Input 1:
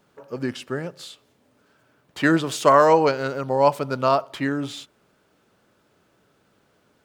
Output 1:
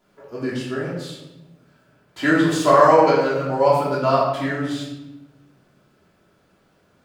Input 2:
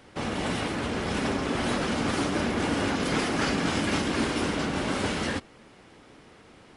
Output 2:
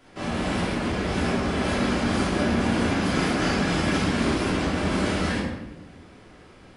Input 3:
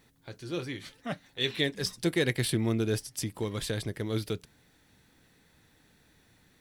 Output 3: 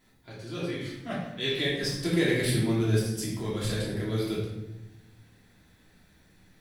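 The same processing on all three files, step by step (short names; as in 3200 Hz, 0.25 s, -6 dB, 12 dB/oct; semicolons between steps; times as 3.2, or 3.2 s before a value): shoebox room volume 380 m³, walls mixed, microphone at 3 m; gain -6 dB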